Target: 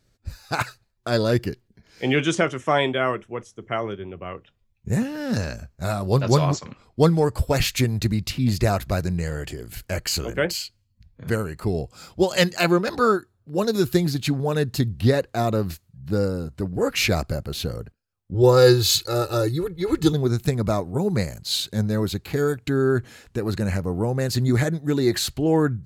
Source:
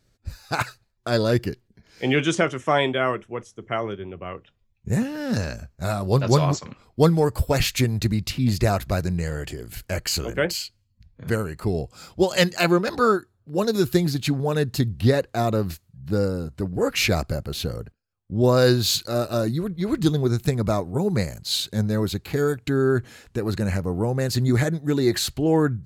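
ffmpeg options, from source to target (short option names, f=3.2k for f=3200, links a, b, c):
-filter_complex "[0:a]asettb=1/sr,asplit=3[a][b][c];[a]atrim=end=6.494[d];[b]atrim=start=6.49:end=7.5,asetpts=PTS-STARTPTS,afade=t=in:d=0.004:c=qsin,afade=t=out:st=1.006:d=0.004:c=qsin,lowpass=11k[e];[c]atrim=start=7.496[f];[d][e]acrossfade=d=0.004:c1=hsin:c2=qsin[g];[g][f]acrossfade=d=0.004:c1=qsin:c2=hsin,asettb=1/sr,asplit=3[h][i][j];[h]atrim=end=18.344[k];[i]atrim=start=18.34:end=20.13,asetpts=PTS-STARTPTS,afade=t=in:d=0.004:c=qsin,afade=t=out:st=1.786:d=0.004:c=qsin,aecho=1:1:2.3:0.91,atrim=end_sample=78939[l];[j]atrim=start=20.126[m];[k][l]acrossfade=d=0.004:c1=hsin:c2=qsin[n];[n][m]acrossfade=d=0.004:c1=qsin:c2=hsin"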